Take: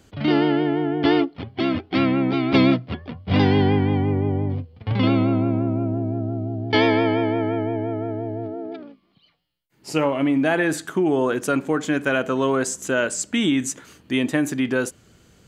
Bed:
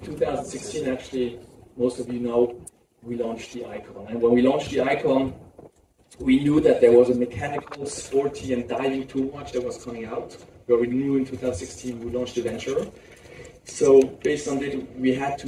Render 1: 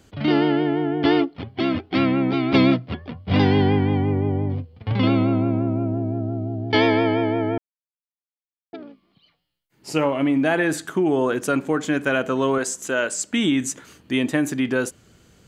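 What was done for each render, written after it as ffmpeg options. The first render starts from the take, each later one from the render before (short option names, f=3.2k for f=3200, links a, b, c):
-filter_complex "[0:a]asettb=1/sr,asplit=3[a][b][c];[a]atrim=end=12.584[d];[b]atrim=start=12.58:end=13.33,asetpts=PTS-STARTPTS,afade=t=in:d=0.004:c=qsin,afade=t=out:st=0.746:d=0.004:c=qsin,lowshelf=f=210:g=-10.5[e];[c]atrim=start=13.326[f];[d][e]acrossfade=d=0.004:c1=hsin:c2=qsin[g];[g][f]acrossfade=d=0.004:c1=qsin:c2=hsin,asplit=3[h][i][j];[h]atrim=end=7.58,asetpts=PTS-STARTPTS,afade=t=out:st=7.576:d=0.004:c=hsin[k];[i]atrim=start=7.58:end=8.73,asetpts=PTS-STARTPTS,volume=0[l];[j]atrim=start=8.73,asetpts=PTS-STARTPTS,afade=t=in:d=0.004:c=hsin[m];[k][l][m]concat=n=3:v=0:a=1"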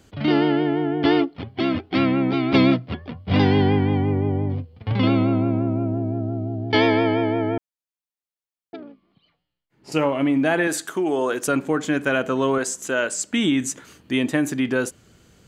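-filter_complex "[0:a]asettb=1/sr,asplit=3[a][b][c];[a]atrim=end=8.804[d];[b]atrim=start=8.8:end=9.92,asetpts=PTS-STARTPTS,afade=t=in:d=0.004:c=qsin,afade=t=out:st=1.116:d=0.004:c=qsin,lowpass=f=2.1k:p=1[e];[c]atrim=start=9.916[f];[d][e]acrossfade=d=0.004:c1=hsin:c2=qsin[g];[g][f]acrossfade=d=0.004:c1=qsin:c2=hsin,asettb=1/sr,asplit=3[h][i][j];[h]atrim=end=10.674[k];[i]atrim=start=10.67:end=11.48,asetpts=PTS-STARTPTS,afade=t=in:d=0.004:c=qsin,afade=t=out:st=0.806:d=0.004:c=qsin,bass=f=250:g=-11,treble=f=4k:g=5[l];[j]atrim=start=11.476[m];[k][l]acrossfade=d=0.004:c1=hsin:c2=qsin[n];[n][m]acrossfade=d=0.004:c1=qsin:c2=hsin"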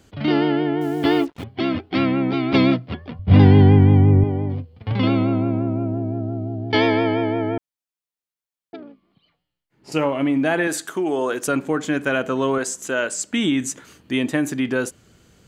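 -filter_complex "[0:a]asettb=1/sr,asplit=3[a][b][c];[a]atrim=end=0.814[d];[b]atrim=start=0.81:end=1.44,asetpts=PTS-STARTPTS,afade=t=in:d=0.004:c=qsin,afade=t=out:st=0.626:d=0.004:c=qsin,acrusher=bits=6:mix=0:aa=0.5[e];[c]atrim=start=1.436[f];[d][e]acrossfade=d=0.004:c1=hsin:c2=qsin[g];[g][f]acrossfade=d=0.004:c1=qsin:c2=hsin,asettb=1/sr,asplit=3[h][i][j];[h]atrim=end=3.194[k];[i]atrim=start=3.19:end=4.24,asetpts=PTS-STARTPTS,afade=t=in:d=0.004:c=qsin,afade=t=out:st=1.046:d=0.004:c=qsin,aemphasis=mode=reproduction:type=bsi[l];[j]atrim=start=4.236[m];[k][l]acrossfade=d=0.004:c1=hsin:c2=qsin[n];[n][m]acrossfade=d=0.004:c1=qsin:c2=hsin"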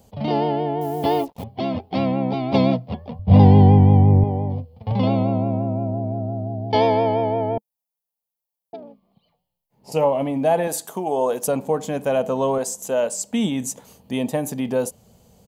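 -af "firequalizer=gain_entry='entry(150,0);entry(210,4);entry(320,-11);entry(470,4);entry(860,6);entry(1400,-14);entry(2600,-7);entry(5000,-2);entry(7900,-1);entry(12000,8)':delay=0.05:min_phase=1"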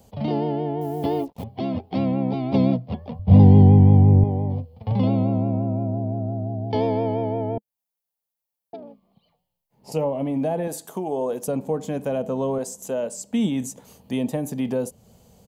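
-filter_complex "[0:a]acrossover=split=460[a][b];[b]acompressor=threshold=-38dB:ratio=2[c];[a][c]amix=inputs=2:normalize=0"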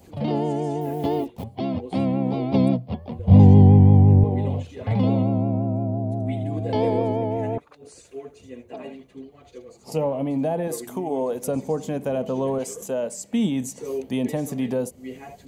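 -filter_complex "[1:a]volume=-15dB[a];[0:a][a]amix=inputs=2:normalize=0"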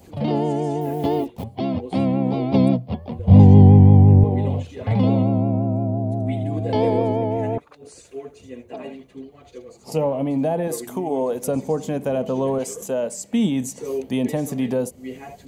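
-af "volume=2.5dB,alimiter=limit=-1dB:level=0:latency=1"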